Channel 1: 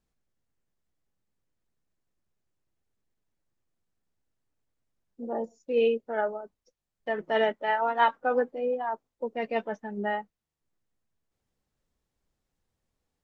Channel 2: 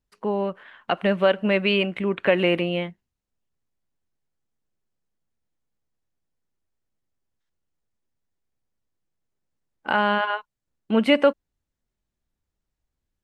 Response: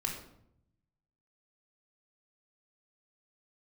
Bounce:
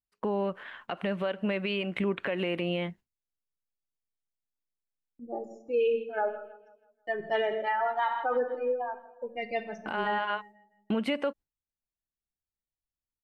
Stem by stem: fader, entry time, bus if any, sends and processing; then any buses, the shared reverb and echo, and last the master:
+1.5 dB, 0.00 s, send -5.5 dB, echo send -16.5 dB, per-bin expansion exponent 2; gate with hold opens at -54 dBFS; bell 250 Hz -6.5 dB 0.32 oct
+3.0 dB, 0.00 s, no send, no echo send, gate with hold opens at -40 dBFS; compressor 10:1, threshold -27 dBFS, peak gain reduction 15 dB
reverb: on, RT60 0.75 s, pre-delay 3 ms
echo: feedback echo 0.162 s, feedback 43%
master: limiter -20 dBFS, peak gain reduction 11.5 dB

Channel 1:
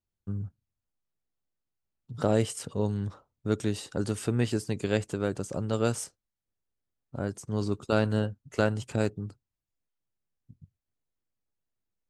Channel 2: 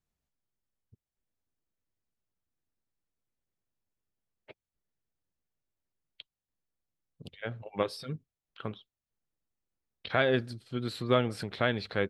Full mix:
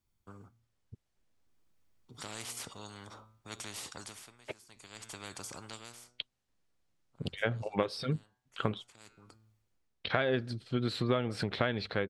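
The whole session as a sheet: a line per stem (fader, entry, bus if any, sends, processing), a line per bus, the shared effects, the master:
-9.5 dB, 0.00 s, no send, comb 0.9 ms, depth 41%; flange 0.47 Hz, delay 7.8 ms, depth 1.5 ms, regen +89%; spectral compressor 4:1; auto duck -19 dB, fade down 0.50 s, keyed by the second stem
-5.0 dB, 0.00 s, no send, Bessel low-pass 6800 Hz; AGC gain up to 15 dB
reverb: off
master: compressor 6:1, threshold -26 dBFS, peak gain reduction 11.5 dB

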